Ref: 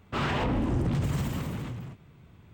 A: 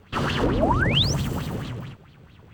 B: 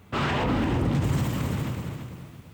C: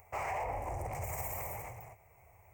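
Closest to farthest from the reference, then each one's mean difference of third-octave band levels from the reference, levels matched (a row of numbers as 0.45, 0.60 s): A, B, C; 2.5, 4.0, 9.5 dB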